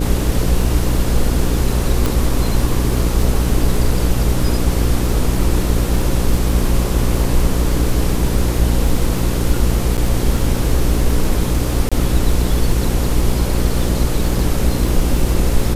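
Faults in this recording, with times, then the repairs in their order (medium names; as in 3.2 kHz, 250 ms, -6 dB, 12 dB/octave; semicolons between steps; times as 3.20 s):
buzz 60 Hz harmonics 9 -19 dBFS
crackle 46 per s -23 dBFS
2.06 s: pop
9.97–9.98 s: dropout 8.6 ms
11.89–11.92 s: dropout 26 ms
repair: de-click; de-hum 60 Hz, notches 9; interpolate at 9.97 s, 8.6 ms; interpolate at 11.89 s, 26 ms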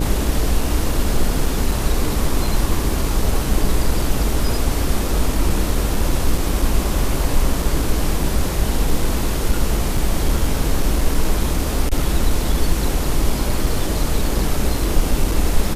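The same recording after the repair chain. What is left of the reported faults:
nothing left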